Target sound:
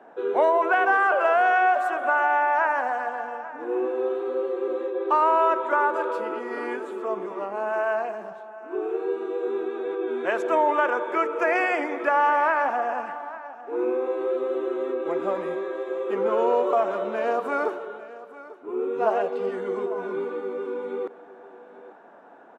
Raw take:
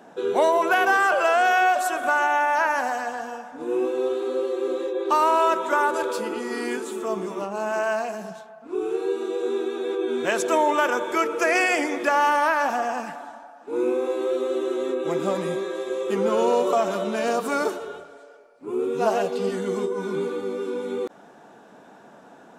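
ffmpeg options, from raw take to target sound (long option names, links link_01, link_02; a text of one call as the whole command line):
ffmpeg -i in.wav -filter_complex "[0:a]acrossover=split=290 2400:gain=0.126 1 0.0891[link_01][link_02][link_03];[link_01][link_02][link_03]amix=inputs=3:normalize=0,asplit=2[link_04][link_05];[link_05]aecho=0:1:846:0.133[link_06];[link_04][link_06]amix=inputs=2:normalize=0" out.wav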